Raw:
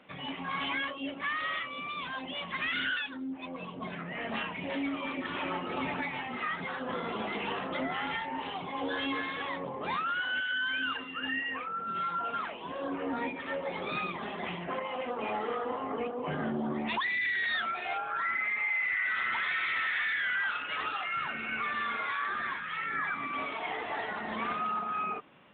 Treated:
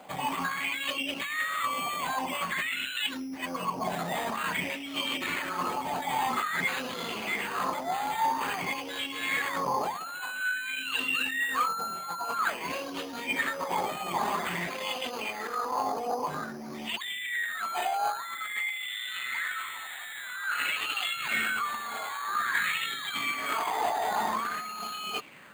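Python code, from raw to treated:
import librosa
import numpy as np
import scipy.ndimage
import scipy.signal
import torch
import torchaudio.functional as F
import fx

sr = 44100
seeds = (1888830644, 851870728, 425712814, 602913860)

y = fx.over_compress(x, sr, threshold_db=-38.0, ratio=-1.0)
y = np.repeat(y[::8], 8)[:len(y)]
y = fx.bell_lfo(y, sr, hz=0.5, low_hz=750.0, high_hz=3100.0, db=14)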